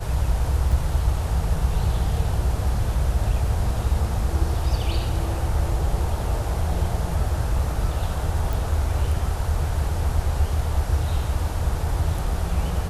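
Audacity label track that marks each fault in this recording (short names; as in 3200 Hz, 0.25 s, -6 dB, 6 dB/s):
0.720000	0.720000	gap 4.1 ms
8.530000	8.530000	pop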